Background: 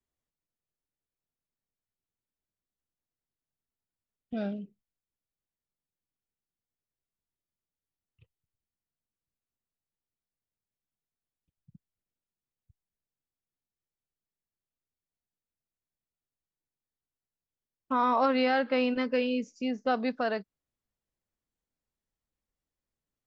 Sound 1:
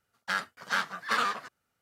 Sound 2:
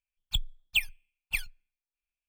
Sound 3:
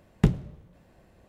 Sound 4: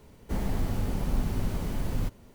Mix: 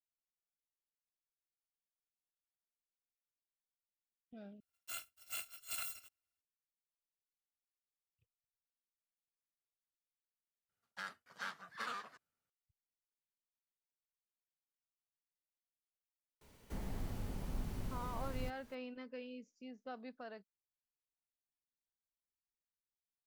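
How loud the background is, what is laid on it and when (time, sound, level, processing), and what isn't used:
background -20 dB
4.6 replace with 1 -15 dB + FFT order left unsorted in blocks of 256 samples
10.69 add 1 -15.5 dB
16.41 add 4 -13.5 dB + mismatched tape noise reduction encoder only
not used: 2, 3

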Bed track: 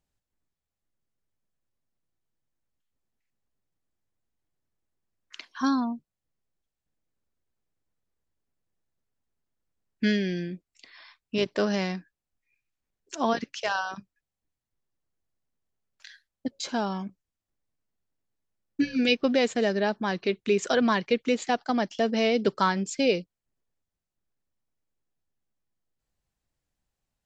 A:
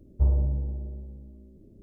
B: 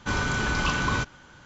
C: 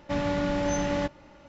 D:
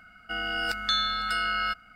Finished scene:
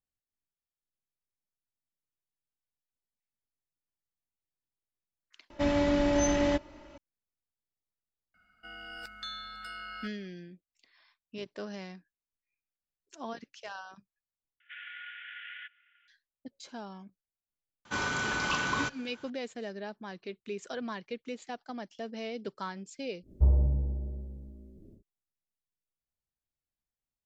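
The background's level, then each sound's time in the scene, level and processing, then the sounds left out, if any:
bed track -14.5 dB
5.5 replace with C -1 dB + comb 3.1 ms, depth 61%
8.34 add D -15 dB
14.6 replace with C -4.5 dB + Chebyshev band-pass 1400–3400 Hz, order 5
17.85 add B -3.5 dB + HPF 300 Hz 6 dB/oct
23.21 add A -1 dB, fades 0.10 s

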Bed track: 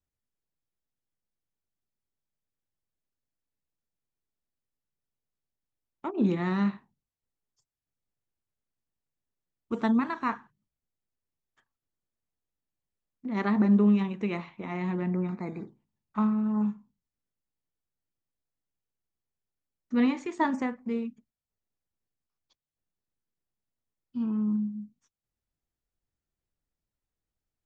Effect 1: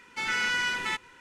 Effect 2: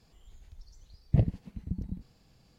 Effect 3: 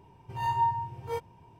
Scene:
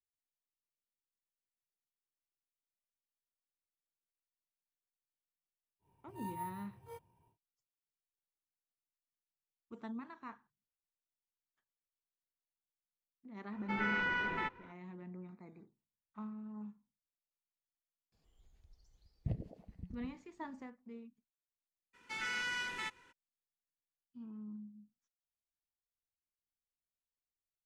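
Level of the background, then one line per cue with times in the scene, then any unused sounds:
bed track -19.5 dB
5.79 add 3 -17.5 dB, fades 0.10 s + sample-and-hold 4×
13.52 add 1 -0.5 dB + Bessel low-pass 1100 Hz
18.12 add 2 -14 dB + delay with a stepping band-pass 0.108 s, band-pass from 370 Hz, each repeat 0.7 oct, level -2 dB
21.93 add 1 -10.5 dB, fades 0.02 s

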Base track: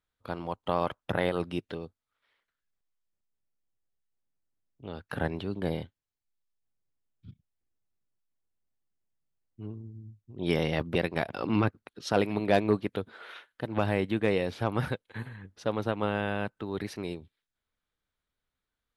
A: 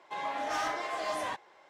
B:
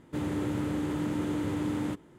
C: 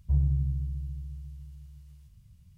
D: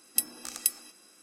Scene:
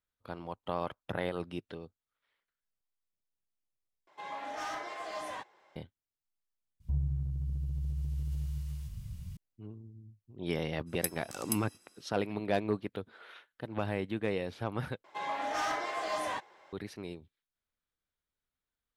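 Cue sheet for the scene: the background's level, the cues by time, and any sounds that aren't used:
base track -6.5 dB
4.07 replace with A -6 dB
6.8 replace with C -7 dB + recorder AGC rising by 73 dB/s, up to +20 dB
10.86 add D -8.5 dB, fades 0.02 s
15.04 replace with A -0.5 dB
not used: B

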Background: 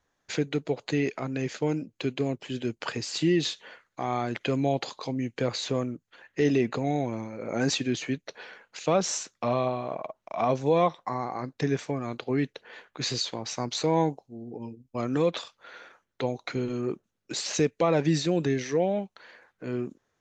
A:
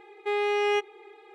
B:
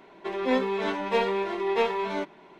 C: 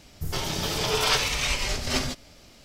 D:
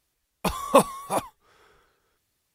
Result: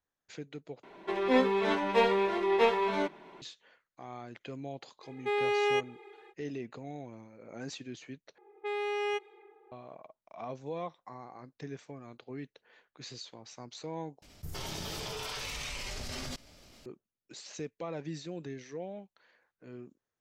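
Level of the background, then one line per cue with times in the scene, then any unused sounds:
background -15.5 dB
0.83 replace with B -0.5 dB
5 add A -3 dB, fades 0.05 s
8.38 replace with A -7.5 dB + low-pass opened by the level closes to 820 Hz, open at -25 dBFS
14.22 replace with C -3 dB + level quantiser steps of 18 dB
not used: D

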